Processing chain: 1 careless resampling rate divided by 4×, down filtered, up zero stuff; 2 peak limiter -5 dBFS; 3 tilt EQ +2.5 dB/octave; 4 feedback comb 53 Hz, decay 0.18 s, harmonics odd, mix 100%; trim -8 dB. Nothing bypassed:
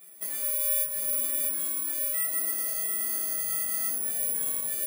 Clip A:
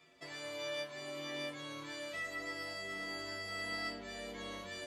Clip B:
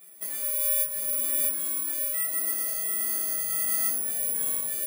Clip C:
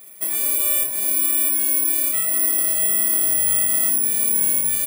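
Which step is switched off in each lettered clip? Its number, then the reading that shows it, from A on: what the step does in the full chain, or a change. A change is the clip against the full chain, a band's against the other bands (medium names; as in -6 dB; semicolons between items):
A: 1, 8 kHz band -27.5 dB; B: 2, loudness change +1.5 LU; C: 4, 250 Hz band +4.0 dB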